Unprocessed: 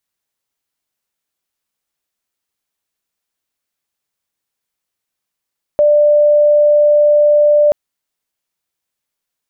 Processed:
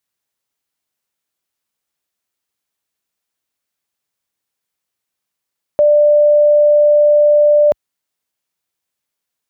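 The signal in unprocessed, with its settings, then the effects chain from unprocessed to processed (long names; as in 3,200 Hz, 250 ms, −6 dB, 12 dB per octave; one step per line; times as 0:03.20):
tone sine 592 Hz −6.5 dBFS 1.93 s
high-pass filter 50 Hz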